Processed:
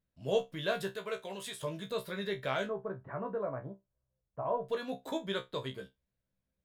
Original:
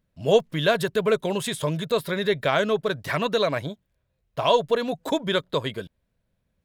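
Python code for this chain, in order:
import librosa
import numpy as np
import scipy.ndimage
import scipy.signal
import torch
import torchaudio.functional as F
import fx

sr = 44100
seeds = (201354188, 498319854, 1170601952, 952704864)

y = fx.low_shelf(x, sr, hz=360.0, db=-12.0, at=(0.94, 1.59))
y = fx.lowpass(y, sr, hz=1300.0, slope=24, at=(2.66, 4.62))
y = fx.comb_fb(y, sr, f0_hz=65.0, decay_s=0.18, harmonics='all', damping=0.0, mix_pct=100)
y = y * librosa.db_to_amplitude(-6.5)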